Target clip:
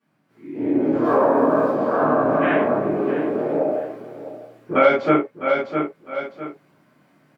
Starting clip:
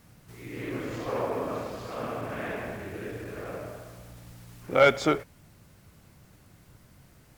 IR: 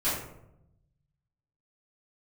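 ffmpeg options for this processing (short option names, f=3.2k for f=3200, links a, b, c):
-filter_complex "[0:a]asettb=1/sr,asplit=3[a][b][c];[a]atrim=end=1.044[d];[b]atrim=start=1.04:end=1.7,asetpts=PTS-STARTPTS,afade=t=in:d=0.004:c=qsin,afade=t=out:st=0.656:d=0.004:c=qsin,highshelf=f=4k:g=12[e];[c]atrim=start=1.696[f];[d][e]acrossfade=d=0.004:c1=hsin:c2=qsin[g];[g][f]acrossfade=d=0.004:c1=qsin:c2=hsin,asettb=1/sr,asplit=3[h][i][j];[h]atrim=end=2.954[k];[i]atrim=start=2.95:end=3.52,asetpts=PTS-STARTPTS,afade=t=in:d=0.004:c=qsin,afade=t=out:st=0.566:d=0.004:c=qsin,aeval=exprs='0.02*(abs(mod(val(0)/0.02+3,4)-2)-1)':c=same[l];[j]atrim=start=3.516[m];[k][l]acrossfade=d=0.004:c1=hsin:c2=qsin[n];[n][m]acrossfade=d=0.004:c1=qsin:c2=hsin,highpass=f=170:w=0.5412,highpass=f=170:w=1.3066,afwtdn=0.02,bass=f=250:g=-1,treble=f=4k:g=-13,aecho=1:1:655|1310:0.2|0.0439,dynaudnorm=f=520:g=3:m=10dB[o];[1:a]atrim=start_sample=2205,afade=t=out:st=0.13:d=0.01,atrim=end_sample=6174[p];[o][p]afir=irnorm=-1:irlink=0,acompressor=threshold=-15dB:ratio=3"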